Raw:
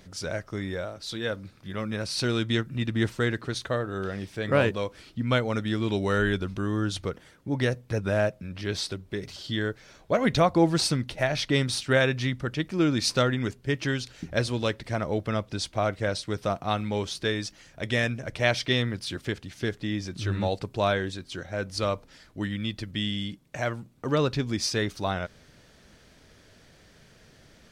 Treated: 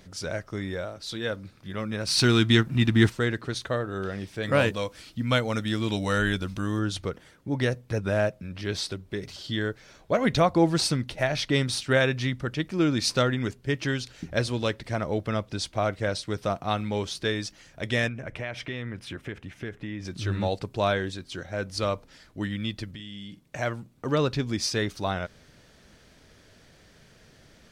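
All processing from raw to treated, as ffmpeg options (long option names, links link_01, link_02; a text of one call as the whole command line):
ffmpeg -i in.wav -filter_complex "[0:a]asettb=1/sr,asplit=3[link_01][link_02][link_03];[link_01]atrim=end=2.074[link_04];[link_02]atrim=start=2.07:end=3.1,asetpts=PTS-STARTPTS,afade=type=in:duration=0.004:curve=qsin,afade=type=out:start_time=1.026:duration=0.004:curve=qsin,equalizer=frequency=540:width_type=o:width=0.34:gain=-14,acontrast=89,aeval=exprs='sgn(val(0))*max(abs(val(0))-0.00355,0)':channel_layout=same[link_05];[link_03]atrim=start=3.096[link_06];[link_04][link_05]acrossfade=duration=0.004:curve1=hsin:curve2=qsin[link_07];[link_07][link_06]acrossfade=duration=0.004:curve1=qsin:curve2=hsin,asettb=1/sr,asplit=3[link_08][link_09][link_10];[link_08]atrim=end=4.434[link_11];[link_09]atrim=start=4.43:end=6.79,asetpts=PTS-STARTPTS,afade=type=in:duration=0.004:curve=qsin,afade=type=out:start_time=2.356:duration=0.004:curve=qsin,highshelf=frequency=4100:gain=8.5,bandreject=frequency=390:width=6.7[link_12];[link_10]atrim=start=6.786[link_13];[link_11][link_12]acrossfade=duration=0.004:curve1=hsin:curve2=qsin[link_14];[link_14][link_13]acrossfade=duration=0.004:curve1=qsin:curve2=hsin,asettb=1/sr,asplit=3[link_15][link_16][link_17];[link_15]atrim=end=18.084[link_18];[link_16]atrim=start=18.08:end=20.05,asetpts=PTS-STARTPTS,afade=type=in:duration=0.004:curve=qsin,afade=type=out:start_time=1.966:duration=0.004:curve=qsin,highshelf=frequency=3200:width_type=q:width=1.5:gain=-8,acompressor=threshold=-31dB:ratio=4:attack=3.2:release=140:knee=1:detection=peak,bandreject=frequency=4500:width=15[link_19];[link_17]atrim=start=20.046[link_20];[link_18][link_19]acrossfade=duration=0.004:curve1=hsin:curve2=qsin[link_21];[link_21][link_20]acrossfade=duration=0.004:curve1=qsin:curve2=hsin,asettb=1/sr,asplit=3[link_22][link_23][link_24];[link_22]atrim=end=22.944[link_25];[link_23]atrim=start=22.94:end=23.41,asetpts=PTS-STARTPTS,afade=type=in:duration=0.004:curve=qsin,afade=type=out:start_time=0.466:duration=0.004:curve=qsin,acompressor=threshold=-38dB:ratio=5:attack=3.2:release=140:knee=1:detection=peak,asplit=2[link_26][link_27];[link_27]adelay=45,volume=-11.5dB[link_28];[link_26][link_28]amix=inputs=2:normalize=0,atrim=end_sample=20727[link_29];[link_24]atrim=start=23.406[link_30];[link_25][link_29]acrossfade=duration=0.004:curve1=hsin:curve2=qsin[link_31];[link_31][link_30]acrossfade=duration=0.004:curve1=qsin:curve2=hsin" out.wav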